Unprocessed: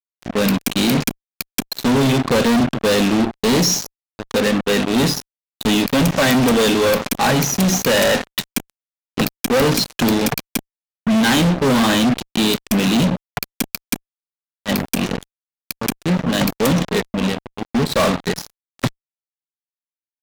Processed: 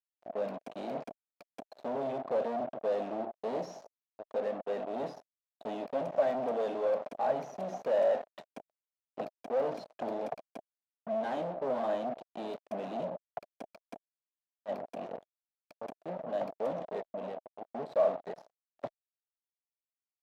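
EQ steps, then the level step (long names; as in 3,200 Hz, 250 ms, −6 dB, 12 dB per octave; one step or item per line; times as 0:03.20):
resonant band-pass 640 Hz, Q 5.3
−5.0 dB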